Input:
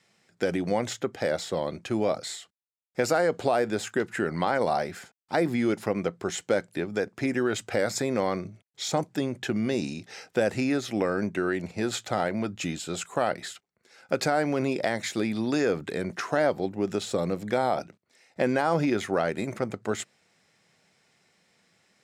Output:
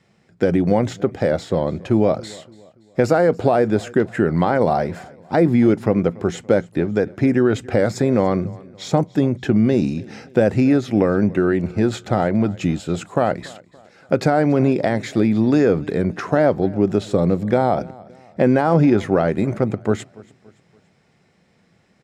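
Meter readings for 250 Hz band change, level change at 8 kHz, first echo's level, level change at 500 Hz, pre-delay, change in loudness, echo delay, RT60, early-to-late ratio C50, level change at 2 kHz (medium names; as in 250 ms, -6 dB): +11.5 dB, -3.0 dB, -22.5 dB, +8.5 dB, no reverb, +9.5 dB, 285 ms, no reverb, no reverb, +3.0 dB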